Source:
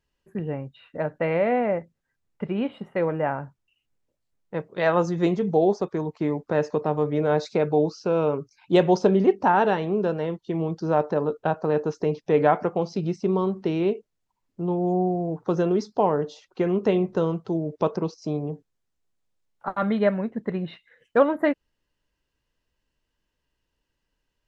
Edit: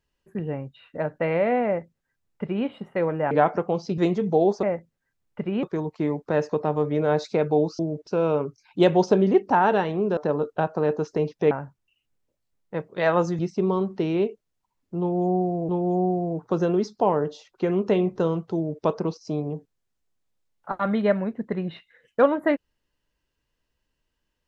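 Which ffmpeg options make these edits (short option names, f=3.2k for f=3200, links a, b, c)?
-filter_complex "[0:a]asplit=11[a][b][c][d][e][f][g][h][i][j][k];[a]atrim=end=3.312[l];[b]atrim=start=12.378:end=13.052[m];[c]atrim=start=5.188:end=5.842[n];[d]atrim=start=1.658:end=2.662[o];[e]atrim=start=5.838:end=8.002[p];[f]atrim=start=17.528:end=17.812[q];[g]atrim=start=7.998:end=10.102[r];[h]atrim=start=11.038:end=12.382[s];[i]atrim=start=3.308:end=5.192[t];[j]atrim=start=13.048:end=15.352[u];[k]atrim=start=14.658[v];[l][m]acrossfade=d=0.004:c1=hsin:c2=hsin[w];[w][n]acrossfade=d=0.004:c1=hsin:c2=hsin[x];[x][o]acrossfade=d=0.004:c1=hsin:c2=hsin[y];[y][p]acrossfade=d=0.004:c1=hsin:c2=hsin[z];[z][q]acrossfade=d=0.004:c1=hsin:c2=hsin[aa];[aa][r]acrossfade=d=0.004:c1=hsin:c2=hsin[ab];[ab][s]acrossfade=d=0.004:c1=hsin:c2=hsin[ac];[ac][t]acrossfade=d=0.004:c1=hsin:c2=hsin[ad];[ad][u]acrossfade=d=0.004:c1=hsin:c2=hsin[ae];[ae][v]acrossfade=d=0.004:c1=hsin:c2=hsin"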